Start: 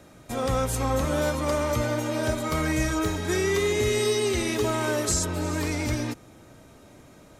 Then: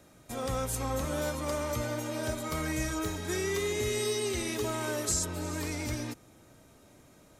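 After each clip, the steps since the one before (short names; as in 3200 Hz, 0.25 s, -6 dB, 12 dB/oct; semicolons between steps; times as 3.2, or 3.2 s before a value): high shelf 5900 Hz +6.5 dB; gain -7.5 dB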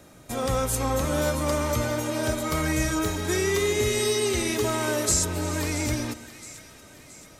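split-band echo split 1300 Hz, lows 0.115 s, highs 0.672 s, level -15 dB; gain +7 dB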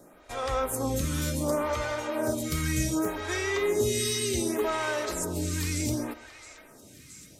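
photocell phaser 0.67 Hz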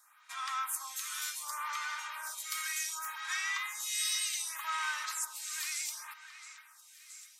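steep high-pass 1000 Hz 48 dB/oct; gain -2 dB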